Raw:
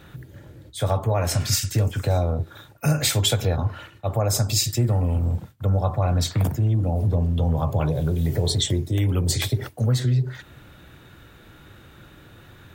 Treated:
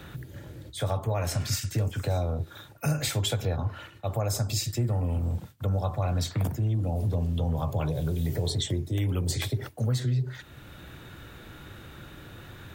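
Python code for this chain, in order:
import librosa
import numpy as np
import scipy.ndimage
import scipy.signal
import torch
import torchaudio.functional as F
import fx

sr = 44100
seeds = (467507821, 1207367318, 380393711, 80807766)

y = fx.band_squash(x, sr, depth_pct=40)
y = y * 10.0 ** (-6.0 / 20.0)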